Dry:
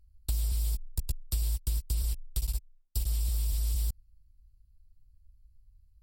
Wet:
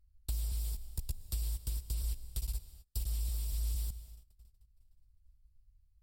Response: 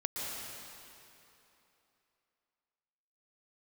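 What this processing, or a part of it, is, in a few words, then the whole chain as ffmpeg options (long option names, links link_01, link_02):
keyed gated reverb: -filter_complex "[0:a]asplit=3[link_01][link_02][link_03];[1:a]atrim=start_sample=2205[link_04];[link_02][link_04]afir=irnorm=-1:irlink=0[link_05];[link_03]apad=whole_len=265904[link_06];[link_05][link_06]sidechaingate=range=-28dB:threshold=-55dB:ratio=16:detection=peak,volume=-14dB[link_07];[link_01][link_07]amix=inputs=2:normalize=0,volume=-7dB"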